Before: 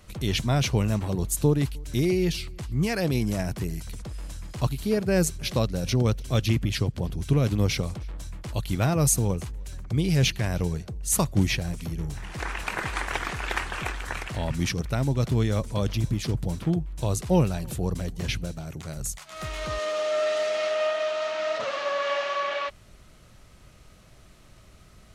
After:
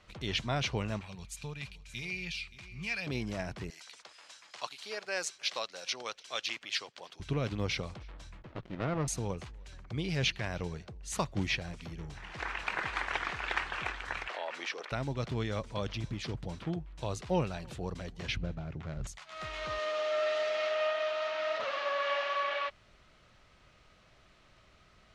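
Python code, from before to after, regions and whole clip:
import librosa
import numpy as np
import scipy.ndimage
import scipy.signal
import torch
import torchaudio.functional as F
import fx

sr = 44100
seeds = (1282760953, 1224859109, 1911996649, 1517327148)

y = fx.chain(x, sr, fx.tone_stack(knobs='10-0-10'),
    fx.small_body(hz=(220.0, 2400.0), ring_ms=25, db=15),
    fx.echo_single(ms=574, db=-15.5), at=(1.01, 3.07))
y = fx.chain(y, sr, fx.highpass(hz=730.0, slope=12),
    fx.peak_eq(hz=6300.0, db=6.0, octaves=1.7), at=(3.7, 7.2))
y = fx.chain(y, sr, fx.bandpass_edges(low_hz=120.0, high_hz=2200.0),
    fx.running_max(window=33), at=(8.42, 9.08))
y = fx.chain(y, sr, fx.highpass(hz=440.0, slope=24),
    fx.high_shelf(hz=4500.0, db=-9.5),
    fx.env_flatten(amount_pct=50), at=(14.28, 14.92))
y = fx.chain(y, sr, fx.median_filter(points=9),
    fx.lowpass(hz=7400.0, slope=24),
    fx.low_shelf(hz=270.0, db=10.5), at=(18.36, 19.07))
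y = scipy.signal.sosfilt(scipy.signal.butter(2, 4100.0, 'lowpass', fs=sr, output='sos'), y)
y = fx.low_shelf(y, sr, hz=440.0, db=-10.5)
y = F.gain(torch.from_numpy(y), -2.5).numpy()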